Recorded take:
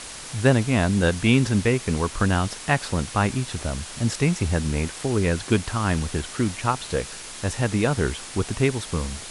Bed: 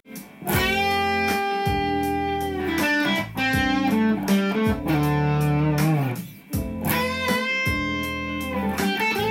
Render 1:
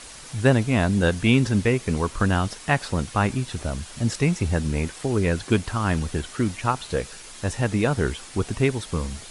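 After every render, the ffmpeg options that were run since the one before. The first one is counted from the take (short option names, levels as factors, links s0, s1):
-af "afftdn=nr=6:nf=-38"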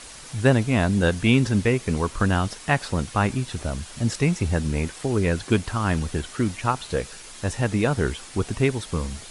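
-af anull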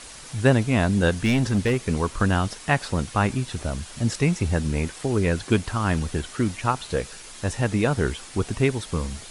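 -filter_complex "[0:a]asettb=1/sr,asplit=3[s0][s1][s2];[s0]atrim=end=1.224[s3];[s1]atrim=start=1.22:end=1.89,asetpts=PTS-STARTPTS,afade=t=in:d=0.004:c=qsin,afade=t=out:st=0.666:d=0.004:c=qsin,asoftclip=type=hard:threshold=0.158[s4];[s2]atrim=start=1.886[s5];[s3][s4]acrossfade=d=0.004:c1=hsin:c2=qsin[s6];[s6][s5]acrossfade=d=0.004:c1=qsin:c2=hsin"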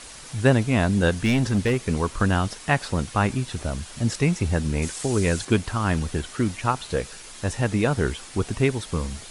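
-filter_complex "[0:a]asettb=1/sr,asplit=3[s0][s1][s2];[s0]atrim=end=4.824[s3];[s1]atrim=start=4.82:end=5.45,asetpts=PTS-STARTPTS,afade=t=in:d=0.004:c=qsin,afade=t=out:st=0.626:d=0.004:c=qsin,equalizer=f=7700:w=0.71:g=9.5[s4];[s2]atrim=start=5.446[s5];[s3][s4]acrossfade=d=0.004:c1=hsin:c2=qsin[s6];[s6][s5]acrossfade=d=0.004:c1=qsin:c2=hsin"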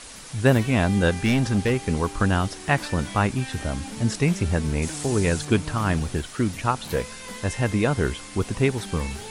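-filter_complex "[1:a]volume=0.15[s0];[0:a][s0]amix=inputs=2:normalize=0"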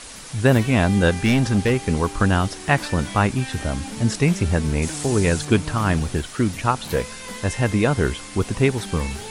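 -af "volume=1.41,alimiter=limit=0.794:level=0:latency=1"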